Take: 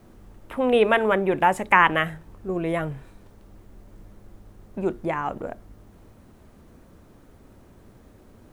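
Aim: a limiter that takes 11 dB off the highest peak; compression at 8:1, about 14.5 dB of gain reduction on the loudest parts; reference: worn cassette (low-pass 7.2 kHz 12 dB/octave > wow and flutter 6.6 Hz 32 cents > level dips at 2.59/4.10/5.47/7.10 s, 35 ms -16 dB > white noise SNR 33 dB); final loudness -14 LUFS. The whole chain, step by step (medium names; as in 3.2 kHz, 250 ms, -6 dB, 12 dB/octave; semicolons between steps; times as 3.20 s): compression 8:1, threshold -28 dBFS; peak limiter -25 dBFS; low-pass 7.2 kHz 12 dB/octave; wow and flutter 6.6 Hz 32 cents; level dips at 2.59/4.10/5.47/7.10 s, 35 ms -16 dB; white noise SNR 33 dB; trim +22.5 dB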